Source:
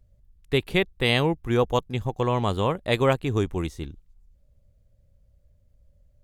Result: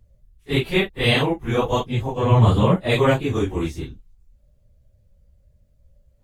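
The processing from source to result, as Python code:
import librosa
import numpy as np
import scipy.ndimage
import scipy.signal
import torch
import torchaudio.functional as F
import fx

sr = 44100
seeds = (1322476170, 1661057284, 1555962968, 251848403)

y = fx.phase_scramble(x, sr, seeds[0], window_ms=100)
y = fx.peak_eq(y, sr, hz=fx.line((2.22, 75.0), (2.76, 220.0)), db=11.5, octaves=1.3, at=(2.22, 2.76), fade=0.02)
y = y * librosa.db_to_amplitude(3.5)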